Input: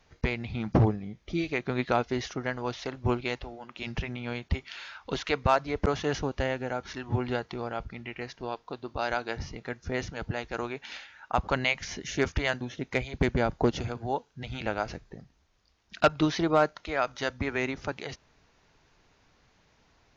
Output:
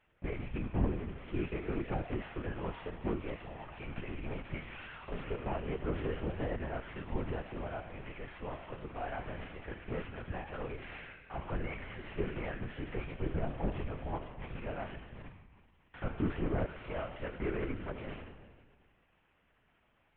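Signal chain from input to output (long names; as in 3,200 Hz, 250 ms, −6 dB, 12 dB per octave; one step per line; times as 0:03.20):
linear delta modulator 16 kbit/s, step −39.5 dBFS
high-pass filter 93 Hz 24 dB per octave
noise gate with hold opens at −35 dBFS
in parallel at 0 dB: brickwall limiter −23.5 dBFS, peak gain reduction 9.5 dB
on the sum: tuned comb filter 140 Hz, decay 1.7 s, mix 80%
harmonic and percussive parts rebalanced percussive −4 dB
linear-prediction vocoder at 8 kHz whisper
level +4 dB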